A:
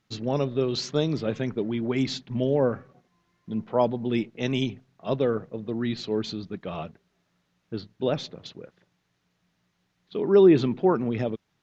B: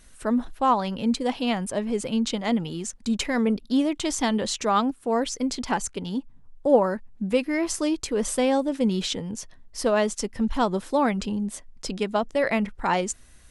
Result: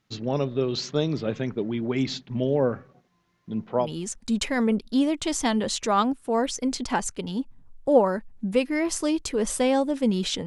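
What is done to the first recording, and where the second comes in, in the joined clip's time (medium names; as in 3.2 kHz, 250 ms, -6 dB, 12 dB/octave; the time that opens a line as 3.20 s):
A
3.84 s: go over to B from 2.62 s, crossfade 0.14 s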